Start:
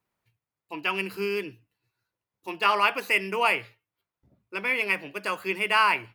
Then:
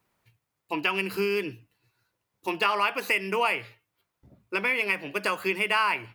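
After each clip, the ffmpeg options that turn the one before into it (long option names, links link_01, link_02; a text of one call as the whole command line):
ffmpeg -i in.wav -af "acompressor=threshold=-33dB:ratio=3,volume=8dB" out.wav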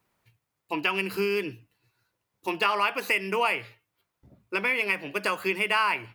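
ffmpeg -i in.wav -af anull out.wav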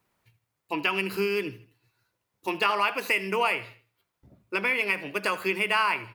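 ffmpeg -i in.wav -af "aecho=1:1:78|156|234:0.133|0.0507|0.0193" out.wav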